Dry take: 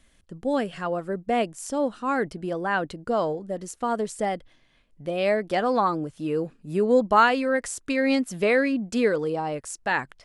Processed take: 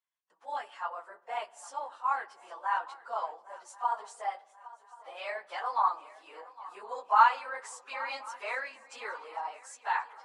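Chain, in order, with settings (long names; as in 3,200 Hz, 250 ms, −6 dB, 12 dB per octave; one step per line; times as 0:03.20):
random phases in long frames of 50 ms
low-pass filter 9,300 Hz 24 dB per octave
noise gate with hold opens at −44 dBFS
four-pole ladder high-pass 850 Hz, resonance 65%
feedback echo with a long and a short gap by turns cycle 1,080 ms, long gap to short 3 to 1, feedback 38%, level −19 dB
on a send at −17 dB: convolution reverb RT60 1.2 s, pre-delay 3 ms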